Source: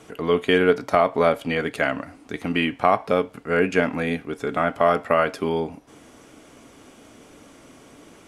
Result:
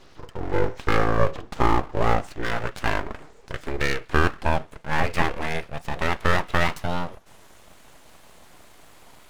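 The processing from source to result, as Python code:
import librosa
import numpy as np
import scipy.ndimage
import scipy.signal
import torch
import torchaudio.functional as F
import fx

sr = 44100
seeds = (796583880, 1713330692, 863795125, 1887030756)

y = fx.speed_glide(x, sr, from_pct=52, to_pct=126)
y = np.abs(y)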